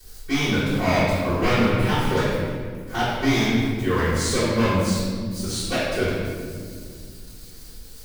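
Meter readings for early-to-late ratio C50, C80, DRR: -2.5 dB, 0.0 dB, -18.5 dB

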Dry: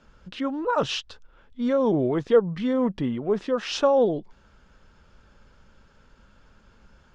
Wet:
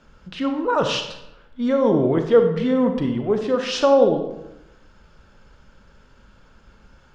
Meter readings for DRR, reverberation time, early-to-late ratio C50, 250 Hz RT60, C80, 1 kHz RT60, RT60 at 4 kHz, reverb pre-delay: 5.5 dB, 0.90 s, 7.0 dB, 1.0 s, 9.5 dB, 0.90 s, 0.60 s, 31 ms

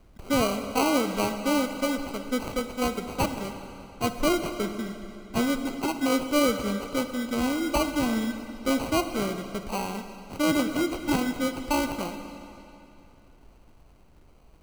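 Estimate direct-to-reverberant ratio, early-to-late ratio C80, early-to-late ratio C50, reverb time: 7.5 dB, 9.0 dB, 8.0 dB, 2.8 s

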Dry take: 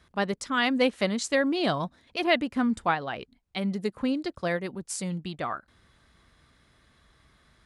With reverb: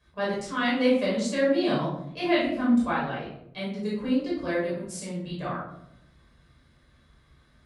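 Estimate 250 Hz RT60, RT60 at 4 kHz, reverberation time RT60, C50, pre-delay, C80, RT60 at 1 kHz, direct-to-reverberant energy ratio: 1.2 s, 0.40 s, 0.80 s, 1.5 dB, 7 ms, 6.0 dB, 0.65 s, -7.5 dB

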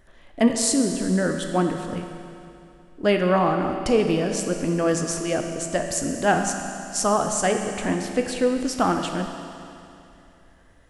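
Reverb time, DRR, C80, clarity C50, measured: 2.8 s, 4.5 dB, 6.0 dB, 5.5 dB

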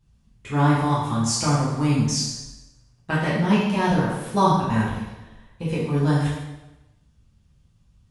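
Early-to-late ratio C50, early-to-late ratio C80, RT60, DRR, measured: 1.0 dB, 4.0 dB, 1.0 s, -8.5 dB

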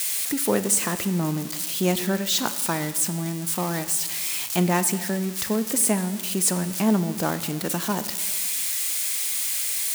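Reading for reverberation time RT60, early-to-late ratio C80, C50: 1.5 s, 14.0 dB, 13.0 dB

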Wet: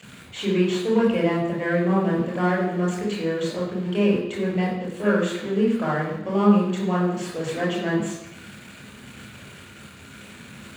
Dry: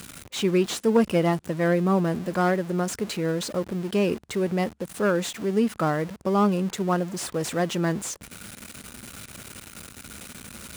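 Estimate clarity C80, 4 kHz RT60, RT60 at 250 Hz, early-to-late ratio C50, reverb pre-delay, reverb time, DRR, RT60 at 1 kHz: 6.0 dB, 0.90 s, 0.90 s, 3.0 dB, 25 ms, 0.90 s, -4.5 dB, 0.90 s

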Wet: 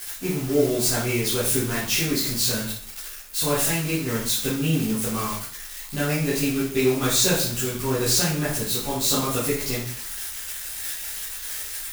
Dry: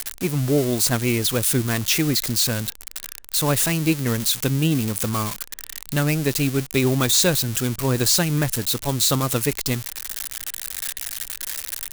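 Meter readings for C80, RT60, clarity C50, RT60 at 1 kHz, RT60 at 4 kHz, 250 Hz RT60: 7.5 dB, 0.55 s, 3.5 dB, 0.55 s, 0.50 s, 0.50 s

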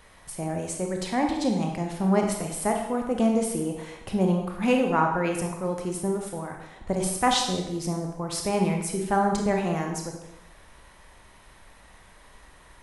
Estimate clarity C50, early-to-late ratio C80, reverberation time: 4.0 dB, 7.0 dB, 0.90 s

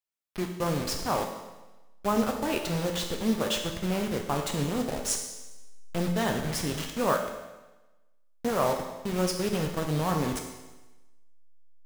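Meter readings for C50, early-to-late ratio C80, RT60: 6.0 dB, 8.0 dB, 1.1 s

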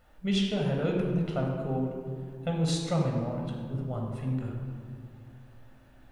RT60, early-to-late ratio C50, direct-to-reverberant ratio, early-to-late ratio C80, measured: 2.1 s, 2.0 dB, 0.0 dB, 3.5 dB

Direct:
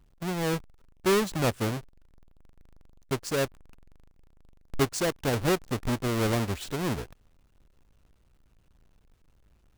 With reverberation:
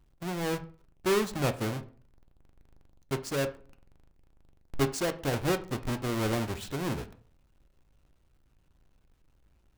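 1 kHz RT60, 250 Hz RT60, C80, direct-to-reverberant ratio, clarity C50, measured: 0.40 s, 0.50 s, 19.5 dB, 7.0 dB, 15.0 dB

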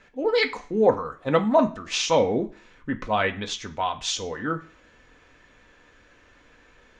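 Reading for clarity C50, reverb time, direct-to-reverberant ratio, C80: 15.5 dB, 0.45 s, 4.0 dB, 20.0 dB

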